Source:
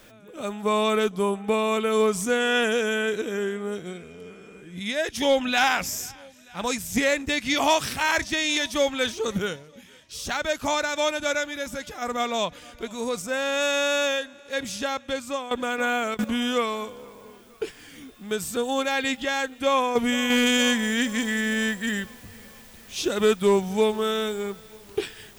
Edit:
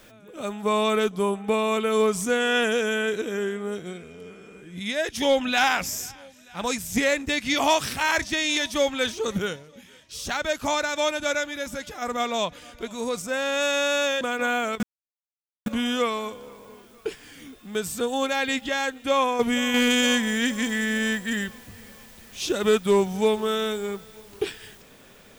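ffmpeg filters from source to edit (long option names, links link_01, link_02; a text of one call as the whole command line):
ffmpeg -i in.wav -filter_complex "[0:a]asplit=3[link_01][link_02][link_03];[link_01]atrim=end=14.212[link_04];[link_02]atrim=start=15.598:end=16.22,asetpts=PTS-STARTPTS,afade=type=out:start_time=0.618:duration=0.004:curve=hsin,apad=pad_dur=0.83[link_05];[link_03]atrim=start=16.22,asetpts=PTS-STARTPTS,afade=type=in:duration=0.004:curve=hsin[link_06];[link_05][link_06]concat=n=2:v=0:a=1[link_07];[link_04][link_07]acrossfade=duration=0.004:curve1=hsin:curve2=hsin" out.wav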